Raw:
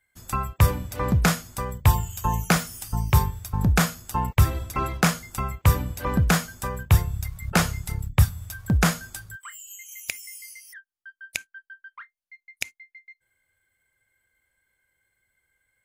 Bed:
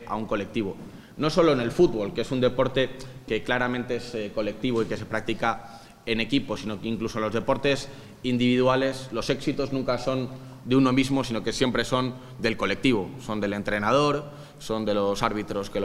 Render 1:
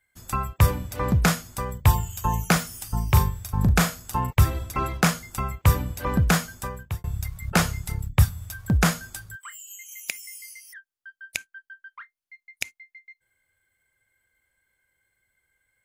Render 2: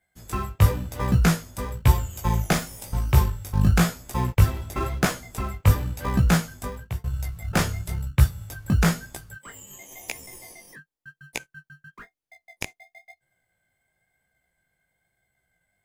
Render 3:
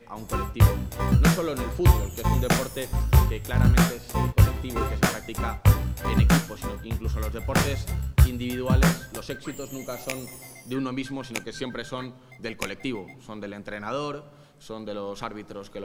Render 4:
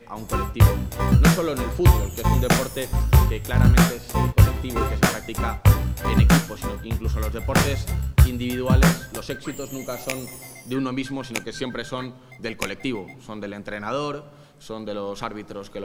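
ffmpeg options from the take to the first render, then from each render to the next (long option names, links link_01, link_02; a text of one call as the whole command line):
ffmpeg -i in.wav -filter_complex "[0:a]asettb=1/sr,asplit=3[link_01][link_02][link_03];[link_01]atrim=end=2.914[link_04];[link_02]atrim=start=2.91:end=4.31,asetpts=PTS-STARTPTS,afade=type=in:duration=0.004:curve=qsin,afade=type=out:start_time=1.396:duration=0.004:curve=qsin,asplit=2[link_05][link_06];[link_06]adelay=40,volume=-9.5dB[link_07];[link_05][link_07]amix=inputs=2:normalize=0,atrim=end_sample=61740[link_08];[link_03]atrim=start=4.306[link_09];[link_04][link_08]acrossfade=duration=0.004:curve1=hsin:curve2=qsin[link_10];[link_10][link_09]acrossfade=duration=0.004:curve1=qsin:curve2=hsin,asettb=1/sr,asplit=3[link_11][link_12][link_13];[link_11]atrim=end=9.364[link_14];[link_12]atrim=start=9.36:end=10.15,asetpts=PTS-STARTPTS,afade=type=in:duration=0.004:curve=qsin,afade=type=out:start_time=0.786:duration=0.004:curve=qsin,highpass=frequency=160:width=0.5412,highpass=frequency=160:width=1.3066[link_15];[link_13]atrim=start=10.146[link_16];[link_14][link_15]acrossfade=duration=0.004:curve1=hsin:curve2=qsin[link_17];[link_17][link_16]acrossfade=duration=0.004:curve1=qsin:curve2=hsin,asplit=2[link_18][link_19];[link_18]atrim=end=7.04,asetpts=PTS-STARTPTS,afade=type=out:start_time=6.54:duration=0.5[link_20];[link_19]atrim=start=7.04,asetpts=PTS-STARTPTS,afade=type=in:duration=0.004:curve=hsin[link_21];[link_20][link_21]concat=n=2:v=0:a=1" out.wav
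ffmpeg -i in.wav -filter_complex "[0:a]asplit=2[link_01][link_02];[link_02]acrusher=samples=31:mix=1:aa=0.000001,volume=-5.5dB[link_03];[link_01][link_03]amix=inputs=2:normalize=0,flanger=delay=15:depth=5.2:speed=0.98" out.wav
ffmpeg -i in.wav -i bed.wav -filter_complex "[1:a]volume=-9dB[link_01];[0:a][link_01]amix=inputs=2:normalize=0" out.wav
ffmpeg -i in.wav -af "volume=3.5dB,alimiter=limit=-3dB:level=0:latency=1" out.wav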